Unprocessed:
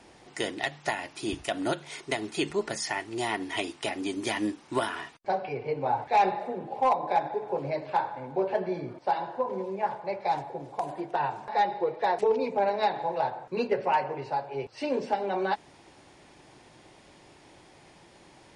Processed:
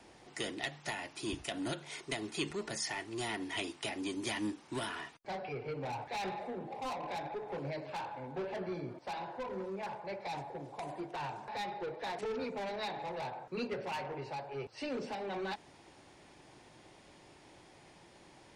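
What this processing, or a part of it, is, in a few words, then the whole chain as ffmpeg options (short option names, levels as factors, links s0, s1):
one-band saturation: -filter_complex "[0:a]acrossover=split=260|2100[s0][s1][s2];[s1]asoftclip=type=tanh:threshold=0.0188[s3];[s0][s3][s2]amix=inputs=3:normalize=0,volume=0.631"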